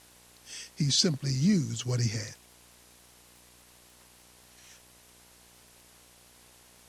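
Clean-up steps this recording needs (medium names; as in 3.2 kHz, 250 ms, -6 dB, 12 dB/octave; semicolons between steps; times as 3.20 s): de-click; de-hum 60.2 Hz, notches 18; noise print and reduce 18 dB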